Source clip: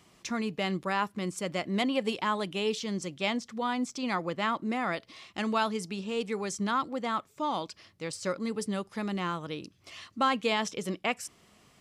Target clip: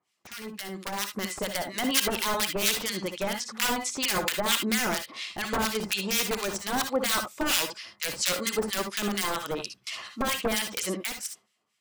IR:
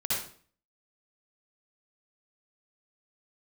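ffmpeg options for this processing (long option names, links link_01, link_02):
-filter_complex "[0:a]highpass=frequency=820:poles=1,alimiter=limit=-23.5dB:level=0:latency=1:release=155,aeval=exprs='(mod(31.6*val(0)+1,2)-1)/31.6':channel_layout=same,dynaudnorm=framelen=110:gausssize=17:maxgain=13.5dB,agate=range=-13dB:threshold=-48dB:ratio=16:detection=peak,acrossover=split=1400[link_01][link_02];[link_01]aeval=exprs='val(0)*(1-1/2+1/2*cos(2*PI*4.3*n/s))':channel_layout=same[link_03];[link_02]aeval=exprs='val(0)*(1-1/2-1/2*cos(2*PI*4.3*n/s))':channel_layout=same[link_04];[link_03][link_04]amix=inputs=2:normalize=0,asplit=2[link_05][link_06];[1:a]atrim=start_sample=2205,atrim=end_sample=3528[link_07];[link_06][link_07]afir=irnorm=-1:irlink=0,volume=-8.5dB[link_08];[link_05][link_08]amix=inputs=2:normalize=0"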